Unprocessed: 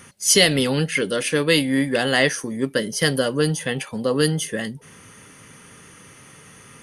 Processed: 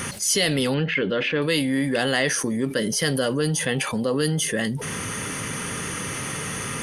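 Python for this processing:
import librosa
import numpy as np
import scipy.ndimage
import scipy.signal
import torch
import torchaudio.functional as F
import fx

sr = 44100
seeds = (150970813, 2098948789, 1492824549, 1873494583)

y = fx.lowpass(x, sr, hz=3300.0, slope=24, at=(0.74, 1.42))
y = fx.env_flatten(y, sr, amount_pct=70)
y = y * 10.0 ** (-7.5 / 20.0)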